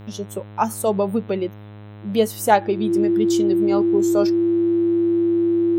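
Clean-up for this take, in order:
hum removal 104.1 Hz, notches 39
notch filter 340 Hz, Q 30

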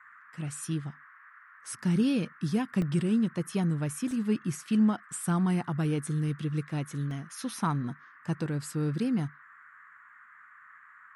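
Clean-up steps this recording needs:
repair the gap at 0:02.82/0:04.11/0:07.11, 1.2 ms
noise reduction from a noise print 20 dB

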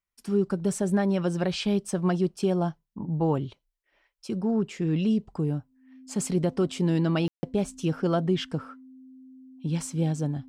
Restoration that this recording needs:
notch filter 260 Hz, Q 30
ambience match 0:07.28–0:07.43

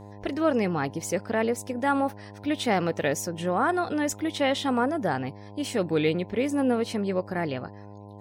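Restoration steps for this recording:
hum removal 102.1 Hz, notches 10

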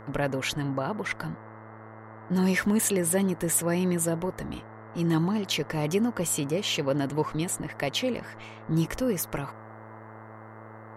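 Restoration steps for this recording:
clipped peaks rebuilt −13.5 dBFS
hum removal 109.9 Hz, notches 19
noise reduction from a noise print 27 dB

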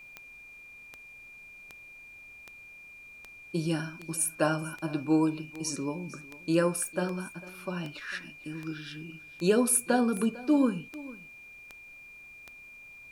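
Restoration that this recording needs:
click removal
notch filter 2,400 Hz, Q 30
downward expander −42 dBFS, range −21 dB
echo removal 450 ms −19 dB

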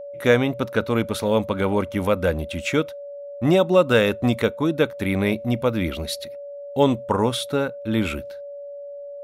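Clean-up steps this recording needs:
notch filter 570 Hz, Q 30

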